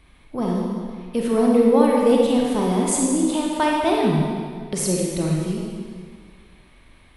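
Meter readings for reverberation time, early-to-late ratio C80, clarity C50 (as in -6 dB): 1.9 s, 1.5 dB, -1.0 dB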